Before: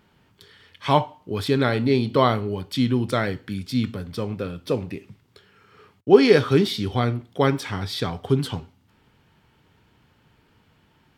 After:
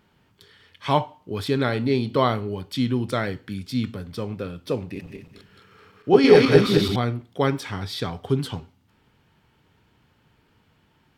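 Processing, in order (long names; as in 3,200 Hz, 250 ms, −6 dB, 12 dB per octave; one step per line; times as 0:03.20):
0:04.85–0:06.96: feedback delay that plays each chunk backwards 107 ms, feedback 55%, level 0 dB
level −2 dB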